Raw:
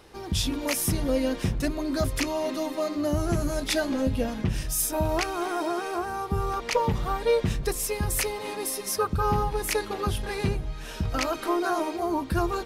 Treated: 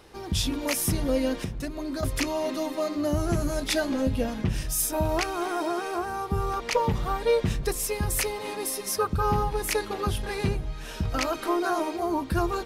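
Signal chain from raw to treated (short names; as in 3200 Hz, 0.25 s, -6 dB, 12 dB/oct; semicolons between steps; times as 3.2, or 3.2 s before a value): 1.39–2.03 compressor 6:1, threshold -29 dBFS, peak gain reduction 8.5 dB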